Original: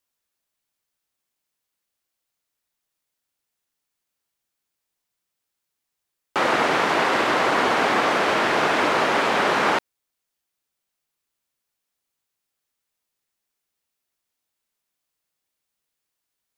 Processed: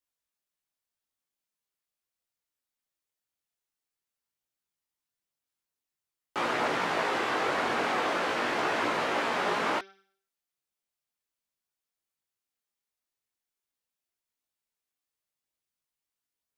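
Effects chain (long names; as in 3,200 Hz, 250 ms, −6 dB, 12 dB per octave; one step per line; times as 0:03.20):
hum removal 194.1 Hz, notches 32
multi-voice chorus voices 2, 0.45 Hz, delay 19 ms, depth 2.8 ms
level −5.5 dB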